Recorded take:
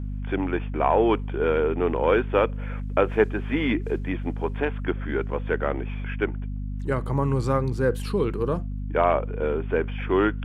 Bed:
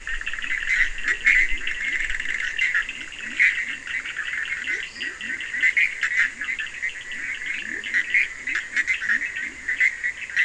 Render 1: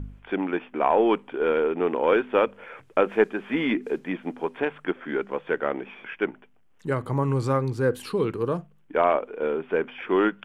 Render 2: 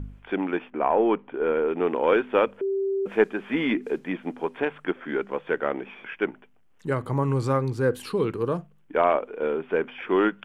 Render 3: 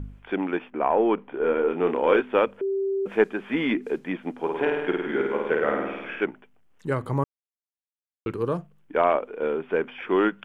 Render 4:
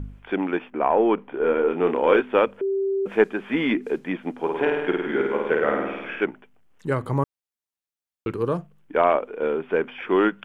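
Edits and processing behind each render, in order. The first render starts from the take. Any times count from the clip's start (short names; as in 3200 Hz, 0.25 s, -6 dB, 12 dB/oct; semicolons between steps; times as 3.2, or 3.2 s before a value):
de-hum 50 Hz, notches 5
0.7–1.68 air absorption 390 m; 2.61–3.06 bleep 390 Hz -22.5 dBFS
1.15–2.21 doubler 29 ms -7 dB; 4.39–6.24 flutter echo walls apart 8.9 m, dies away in 1.1 s; 7.24–8.26 mute
gain +2 dB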